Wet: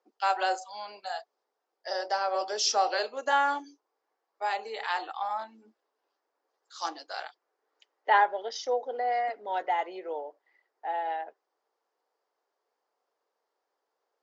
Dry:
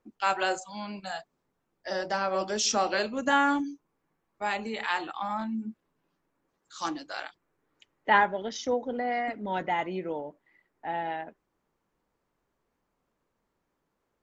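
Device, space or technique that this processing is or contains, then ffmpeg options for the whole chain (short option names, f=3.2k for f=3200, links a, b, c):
phone speaker on a table: -af "highpass=f=420:w=0.5412,highpass=f=420:w=1.3066,equalizer=f=450:t=q:w=4:g=4,equalizer=f=760:t=q:w=4:g=6,equalizer=f=2.4k:t=q:w=4:g=-4,equalizer=f=4.9k:t=q:w=4:g=7,lowpass=f=7k:w=0.5412,lowpass=f=7k:w=1.3066,volume=-2.5dB"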